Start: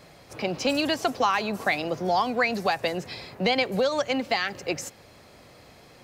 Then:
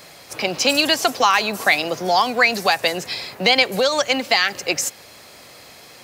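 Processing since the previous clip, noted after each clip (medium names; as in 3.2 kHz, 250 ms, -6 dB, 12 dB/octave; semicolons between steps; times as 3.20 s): tilt EQ +2.5 dB/octave; trim +7 dB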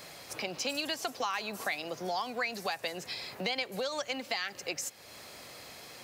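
compression 2:1, threshold -36 dBFS, peak gain reduction 14 dB; trim -5 dB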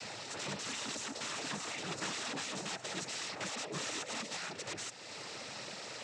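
peak limiter -28.5 dBFS, peak gain reduction 9.5 dB; integer overflow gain 37 dB; noise-vocoded speech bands 12; trim +4.5 dB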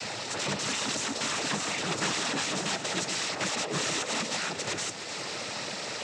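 echo whose repeats swap between lows and highs 151 ms, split 970 Hz, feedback 75%, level -9 dB; trim +9 dB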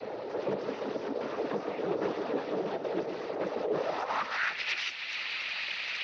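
knee-point frequency compression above 3.7 kHz 1.5:1; band-pass sweep 450 Hz -> 2.5 kHz, 3.68–4.65 s; trim +8 dB; Speex 28 kbps 32 kHz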